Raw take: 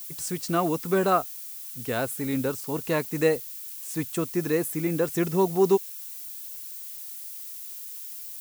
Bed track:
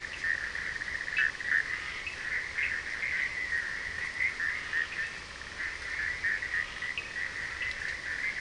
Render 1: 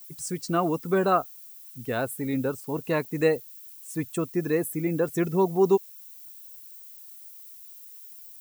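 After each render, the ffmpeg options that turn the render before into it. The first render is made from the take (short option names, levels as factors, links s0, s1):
-af "afftdn=nr=11:nf=-39"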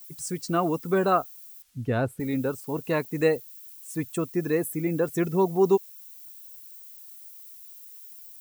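-filter_complex "[0:a]asettb=1/sr,asplit=3[s0][s1][s2];[s0]atrim=end=1.624[s3];[s1]atrim=start=1.62:end=2.2,asetpts=PTS-STARTPTS,afade=t=in:d=0.004:c=qsin,afade=t=out:st=0.576:d=0.004:c=qsin,aemphasis=mode=reproduction:type=bsi[s4];[s2]atrim=start=2.196[s5];[s3][s4]acrossfade=d=0.004:c1=hsin:c2=qsin[s6];[s6][s5]acrossfade=d=0.004:c1=qsin:c2=hsin"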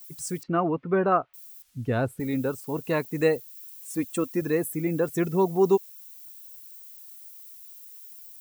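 -filter_complex "[0:a]asettb=1/sr,asplit=3[s0][s1][s2];[s0]atrim=end=0.434[s3];[s1]atrim=start=0.43:end=1.34,asetpts=PTS-STARTPTS,afade=t=in:d=0.004:c=qsin,afade=t=out:st=0.906:d=0.004:c=qsin,lowpass=f=2500:w=0.5412,lowpass=f=2500:w=1.3066[s4];[s2]atrim=start=1.336[s5];[s3][s4]acrossfade=d=0.004:c1=hsin:c2=qsin[s6];[s6][s5]acrossfade=d=0.004:c1=qsin:c2=hsin,asettb=1/sr,asplit=3[s7][s8][s9];[s7]atrim=end=3.564[s10];[s8]atrim=start=3.56:end=4.42,asetpts=PTS-STARTPTS,afade=t=in:d=0.004:c=qsin,afade=t=out:st=0.856:d=0.004:c=qsin,aecho=1:1:3.7:0.65,atrim=end_sample=37926[s11];[s9]atrim=start=4.416[s12];[s10][s11]acrossfade=d=0.004:c1=hsin:c2=qsin[s13];[s13][s12]acrossfade=d=0.004:c1=qsin:c2=hsin"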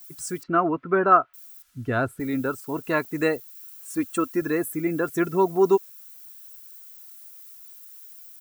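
-af "equalizer=f=1400:t=o:w=0.62:g=10,aecho=1:1:3:0.34"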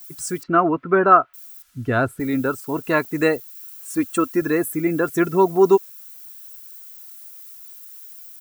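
-af "volume=1.68,alimiter=limit=0.794:level=0:latency=1"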